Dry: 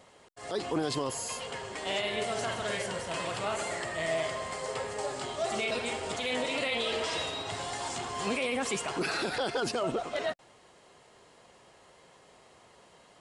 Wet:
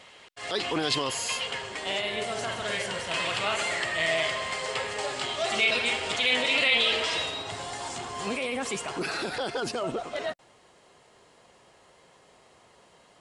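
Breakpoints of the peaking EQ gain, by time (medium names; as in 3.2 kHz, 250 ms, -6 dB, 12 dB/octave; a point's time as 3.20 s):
peaking EQ 2.8 kHz 2 oct
1.32 s +13.5 dB
1.97 s +3 dB
2.48 s +3 dB
3.30 s +11.5 dB
6.84 s +11.5 dB
7.56 s +0.5 dB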